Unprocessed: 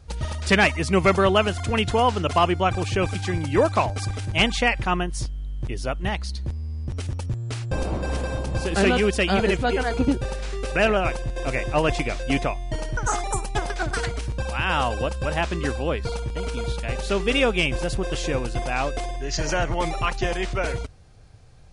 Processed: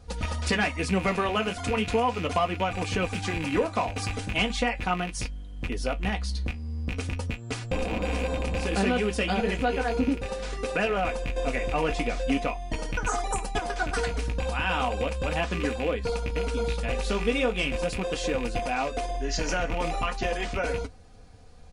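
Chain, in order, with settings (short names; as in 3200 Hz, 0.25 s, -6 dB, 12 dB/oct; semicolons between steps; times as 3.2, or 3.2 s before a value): rattling part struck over -25 dBFS, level -19 dBFS; bell 440 Hz +3 dB 2.8 oct; comb 4.1 ms, depth 58%; compressor 2.5:1, threshold -24 dBFS, peak gain reduction 10.5 dB; flange 0.38 Hz, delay 8.6 ms, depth 10 ms, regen -47%; gain +2.5 dB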